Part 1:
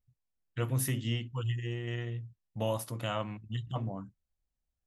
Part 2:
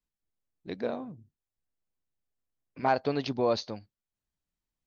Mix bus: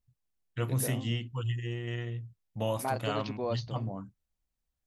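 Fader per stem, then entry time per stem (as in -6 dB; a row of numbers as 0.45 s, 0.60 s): +0.5 dB, -7.0 dB; 0.00 s, 0.00 s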